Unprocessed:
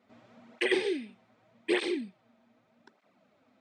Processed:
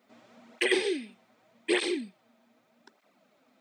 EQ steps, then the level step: high-pass 180 Hz 12 dB/octave; treble shelf 5.6 kHz +11 dB; +1.0 dB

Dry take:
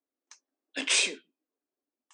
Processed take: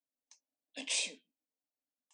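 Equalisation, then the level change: static phaser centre 370 Hz, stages 6; -7.5 dB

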